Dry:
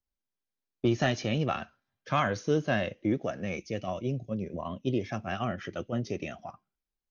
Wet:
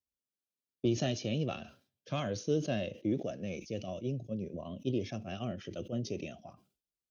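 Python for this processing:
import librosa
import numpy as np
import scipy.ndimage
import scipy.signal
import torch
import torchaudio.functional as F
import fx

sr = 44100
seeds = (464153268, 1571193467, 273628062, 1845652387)

y = scipy.signal.sosfilt(scipy.signal.butter(2, 69.0, 'highpass', fs=sr, output='sos'), x)
y = fx.band_shelf(y, sr, hz=1300.0, db=-11.5, octaves=1.7)
y = fx.sustainer(y, sr, db_per_s=150.0)
y = F.gain(torch.from_numpy(y), -4.0).numpy()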